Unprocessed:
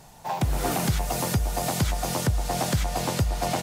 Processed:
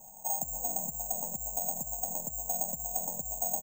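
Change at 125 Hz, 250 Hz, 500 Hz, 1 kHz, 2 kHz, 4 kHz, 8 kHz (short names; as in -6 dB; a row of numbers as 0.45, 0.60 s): -24.5 dB, -18.5 dB, -12.5 dB, -11.5 dB, under -40 dB, under -40 dB, -0.5 dB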